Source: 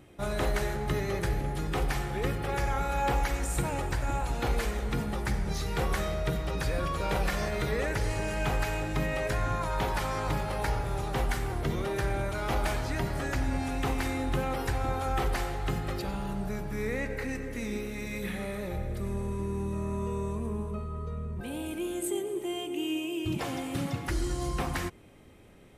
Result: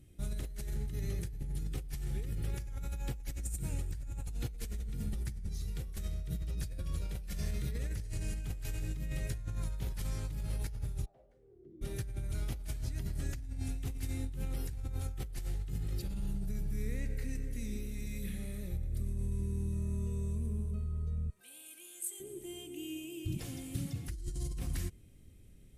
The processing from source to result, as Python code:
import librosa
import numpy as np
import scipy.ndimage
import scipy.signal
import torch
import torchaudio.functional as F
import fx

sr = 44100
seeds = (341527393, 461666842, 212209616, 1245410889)

y = fx.echo_single(x, sr, ms=157, db=-10.5, at=(7.19, 9.39))
y = fx.bandpass_q(y, sr, hz=fx.line((11.04, 750.0), (11.81, 300.0)), q=12.0, at=(11.04, 11.81), fade=0.02)
y = fx.highpass(y, sr, hz=1000.0, slope=12, at=(21.3, 22.2))
y = fx.tone_stack(y, sr, knobs='10-0-1')
y = fx.over_compress(y, sr, threshold_db=-43.0, ratio=-1.0)
y = fx.peak_eq(y, sr, hz=11000.0, db=9.5, octaves=1.8)
y = F.gain(torch.from_numpy(y), 7.0).numpy()